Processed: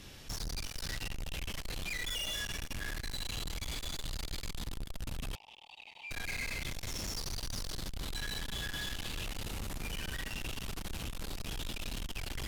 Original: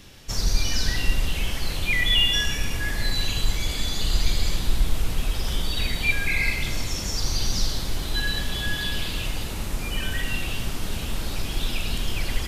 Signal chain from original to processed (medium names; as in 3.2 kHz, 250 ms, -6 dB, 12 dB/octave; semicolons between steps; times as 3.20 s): valve stage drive 33 dB, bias 0.2; 5.35–6.11 s: two resonant band-passes 1.5 kHz, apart 1.6 oct; trim -2.5 dB